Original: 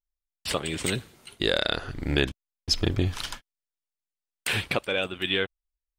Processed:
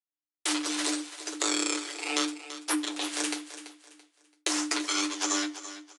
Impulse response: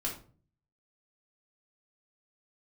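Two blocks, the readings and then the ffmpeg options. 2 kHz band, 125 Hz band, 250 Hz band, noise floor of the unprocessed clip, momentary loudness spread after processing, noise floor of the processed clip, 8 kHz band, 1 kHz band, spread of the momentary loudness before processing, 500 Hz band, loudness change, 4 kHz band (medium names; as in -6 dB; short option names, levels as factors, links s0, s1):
-4.5 dB, under -40 dB, +1.0 dB, under -85 dBFS, 10 LU, under -85 dBFS, +9.0 dB, +1.5 dB, 11 LU, -9.5 dB, -2.0 dB, -2.5 dB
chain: -filter_complex "[0:a]highpass=140,agate=range=0.0224:threshold=0.00398:ratio=3:detection=peak,aecho=1:1:7:0.86,crystalizer=i=6.5:c=0,acompressor=threshold=0.0316:ratio=3,aeval=exprs='abs(val(0))':c=same,lowshelf=f=460:g=-10.5,flanger=delay=7.9:depth=7.1:regen=-46:speed=0.74:shape=sinusoidal,afreqshift=300,aecho=1:1:335|670|1005:0.224|0.0672|0.0201,asplit=2[s0][s1];[1:a]atrim=start_sample=2205[s2];[s1][s2]afir=irnorm=-1:irlink=0,volume=0.237[s3];[s0][s3]amix=inputs=2:normalize=0,aresample=22050,aresample=44100,volume=2.37"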